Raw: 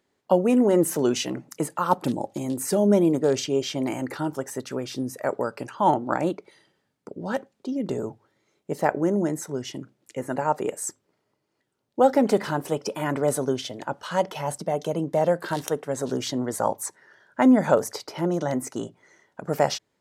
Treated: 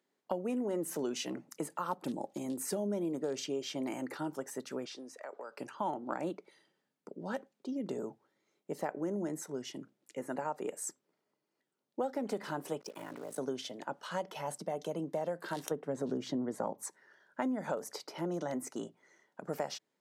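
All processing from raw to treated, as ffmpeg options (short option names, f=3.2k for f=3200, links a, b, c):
-filter_complex "[0:a]asettb=1/sr,asplit=3[a][b][c];[a]atrim=end=4.854[d];[b]atrim=start=4.85:end=5.57,asetpts=PTS-STARTPTS,afade=t=in:d=0.004:c=qsin,afade=t=out:st=0.716:d=0.004:c=qsin,highpass=190,acrossover=split=430 7900:gain=0.224 1 0.0794[e][f][g];[e][f][g]amix=inputs=3:normalize=0,acompressor=threshold=-32dB:ratio=5:attack=3.2:release=140:knee=1:detection=peak[h];[c]atrim=start=5.566[i];[d][h]acrossfade=d=0.004:c1=hsin:c2=qsin[j];[j][i]acrossfade=d=0.004:c1=qsin:c2=hsin,asettb=1/sr,asplit=3[k][l][m];[k]atrim=end=12.804[n];[l]atrim=start=12.8:end=13.38,asetpts=PTS-STARTPTS,afade=t=in:d=0.004:c=qsin,afade=t=out:st=0.576:d=0.004:c=qsin,aeval=exprs='val(0)*sin(2*PI*27*n/s)':c=same,acompressor=threshold=-32dB:ratio=4:attack=3.2:release=140:knee=1:detection=peak,acrusher=bits=7:mix=0:aa=0.5[o];[m]atrim=start=13.376[p];[n][o]acrossfade=d=0.004:c1=hsin:c2=qsin[q];[q][p]acrossfade=d=0.004:c1=qsin:c2=hsin,asettb=1/sr,asplit=3[r][s][t];[r]atrim=end=15.714[u];[s]atrim=start=15.71:end=16.83,asetpts=PTS-STARTPTS,afade=t=in:d=0.004:c=qsin,afade=t=out:st=1.116:d=0.004:c=qsin,lowpass=f=3.5k:p=1,lowshelf=f=440:g=11[v];[t]atrim=start=16.826[w];[u][v]acrossfade=d=0.004:c1=hsin:c2=qsin[x];[x][w]acrossfade=d=0.004:c1=qsin:c2=hsin,highpass=f=160:w=0.5412,highpass=f=160:w=1.3066,acompressor=threshold=-23dB:ratio=6,volume=-8.5dB"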